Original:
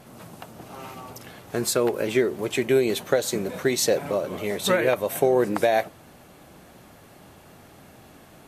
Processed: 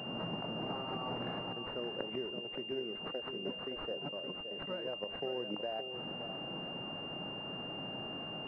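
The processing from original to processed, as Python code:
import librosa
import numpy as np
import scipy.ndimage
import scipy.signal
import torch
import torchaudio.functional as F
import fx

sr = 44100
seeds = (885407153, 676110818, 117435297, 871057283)

y = fx.gate_flip(x, sr, shuts_db=-17.0, range_db=-24)
y = fx.over_compress(y, sr, threshold_db=-41.0, ratio=-0.5)
y = scipy.signal.sosfilt(scipy.signal.butter(4, 130.0, 'highpass', fs=sr, output='sos'), y)
y = fx.echo_feedback(y, sr, ms=569, feedback_pct=18, wet_db=-8.5)
y = fx.pwm(y, sr, carrier_hz=2800.0)
y = y * 10.0 ** (2.0 / 20.0)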